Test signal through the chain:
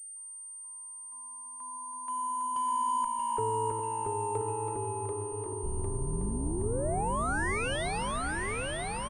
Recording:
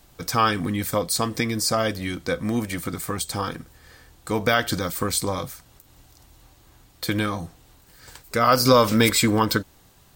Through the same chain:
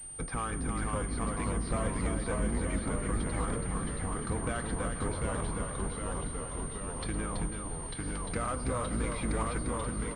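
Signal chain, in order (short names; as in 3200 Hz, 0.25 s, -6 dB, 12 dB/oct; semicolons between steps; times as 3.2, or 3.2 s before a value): octaver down 2 oct, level +3 dB; compressor 6:1, threshold -27 dBFS; treble ducked by the level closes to 2300 Hz, closed at -30.5 dBFS; soft clip -24.5 dBFS; tapped delay 0.112/0.329/0.497 s -17.5/-5.5/-17.5 dB; echoes that change speed 0.479 s, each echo -1 st, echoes 3; diffused feedback echo 0.798 s, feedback 62%, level -16 dB; pulse-width modulation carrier 8800 Hz; gain -2.5 dB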